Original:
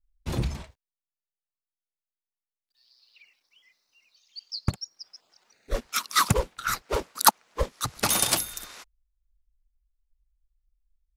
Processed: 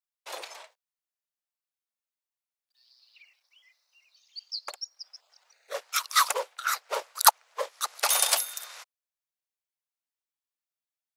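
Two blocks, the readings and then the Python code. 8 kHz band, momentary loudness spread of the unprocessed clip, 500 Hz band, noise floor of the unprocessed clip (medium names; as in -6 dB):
0.0 dB, 21 LU, -3.5 dB, under -85 dBFS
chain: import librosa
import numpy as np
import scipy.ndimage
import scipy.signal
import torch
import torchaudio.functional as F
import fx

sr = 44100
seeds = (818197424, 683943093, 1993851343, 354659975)

y = scipy.signal.sosfilt(scipy.signal.butter(6, 520.0, 'highpass', fs=sr, output='sos'), x)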